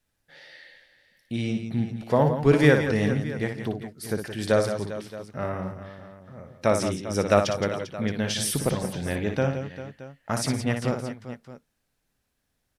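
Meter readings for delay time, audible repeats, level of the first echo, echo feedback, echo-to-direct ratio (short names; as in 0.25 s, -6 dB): 59 ms, 4, -7.0 dB, no steady repeat, -4.0 dB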